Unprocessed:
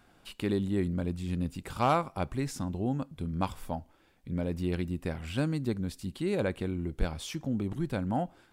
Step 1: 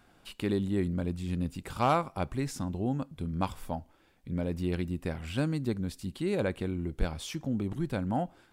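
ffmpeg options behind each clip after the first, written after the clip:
-af anull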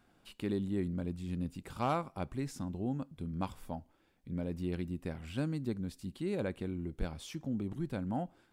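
-af "equalizer=f=230:t=o:w=1.8:g=3.5,volume=-7.5dB"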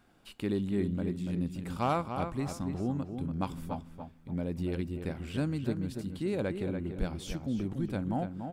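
-filter_complex "[0:a]asplit=2[a][b];[b]adelay=288,lowpass=f=3.3k:p=1,volume=-7dB,asplit=2[c][d];[d]adelay=288,lowpass=f=3.3k:p=1,volume=0.32,asplit=2[e][f];[f]adelay=288,lowpass=f=3.3k:p=1,volume=0.32,asplit=2[g][h];[h]adelay=288,lowpass=f=3.3k:p=1,volume=0.32[i];[a][c][e][g][i]amix=inputs=5:normalize=0,volume=3dB"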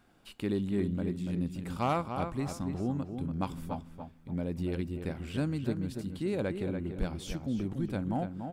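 -af "aeval=exprs='clip(val(0),-1,0.0708)':c=same"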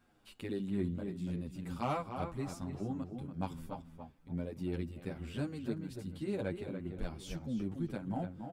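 -filter_complex "[0:a]asplit=2[a][b];[b]adelay=8.8,afreqshift=-2.3[c];[a][c]amix=inputs=2:normalize=1,volume=-2.5dB"

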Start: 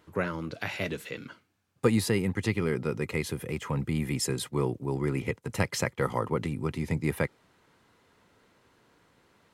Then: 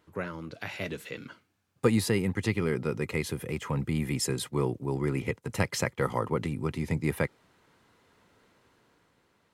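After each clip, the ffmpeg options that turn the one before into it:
-af "dynaudnorm=f=170:g=11:m=5dB,volume=-5dB"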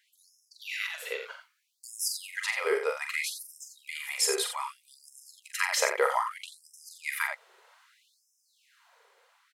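-filter_complex "[0:a]asplit=2[a][b];[b]aecho=0:1:43.73|87.46:0.501|0.398[c];[a][c]amix=inputs=2:normalize=0,afftfilt=real='re*gte(b*sr/1024,370*pow(5200/370,0.5+0.5*sin(2*PI*0.63*pts/sr)))':imag='im*gte(b*sr/1024,370*pow(5200/370,0.5+0.5*sin(2*PI*0.63*pts/sr)))':win_size=1024:overlap=0.75,volume=4.5dB"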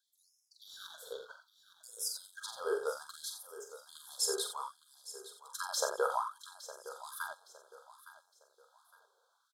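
-filter_complex "[0:a]asplit=2[a][b];[b]aeval=exprs='sgn(val(0))*max(abs(val(0))-0.00841,0)':c=same,volume=-8dB[c];[a][c]amix=inputs=2:normalize=0,asuperstop=centerf=2300:order=20:qfactor=1.4,aecho=1:1:862|1724|2586:0.178|0.0605|0.0206,volume=-8.5dB"

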